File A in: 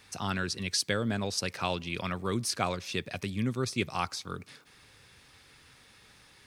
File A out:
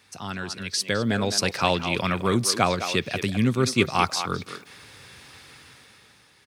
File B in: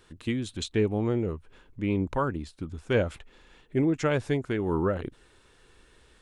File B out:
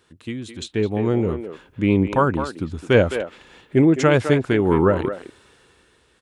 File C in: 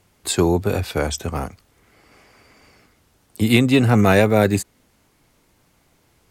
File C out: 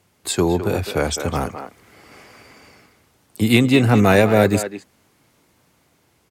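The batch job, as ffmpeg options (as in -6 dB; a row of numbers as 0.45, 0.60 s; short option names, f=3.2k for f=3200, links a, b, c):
-filter_complex "[0:a]highpass=78,asplit=2[a][b];[b]adelay=210,highpass=300,lowpass=3.4k,asoftclip=type=hard:threshold=-10.5dB,volume=-9dB[c];[a][c]amix=inputs=2:normalize=0,dynaudnorm=f=100:g=21:m=12.5dB,volume=-1dB"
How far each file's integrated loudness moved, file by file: +8.0, +9.0, +0.5 LU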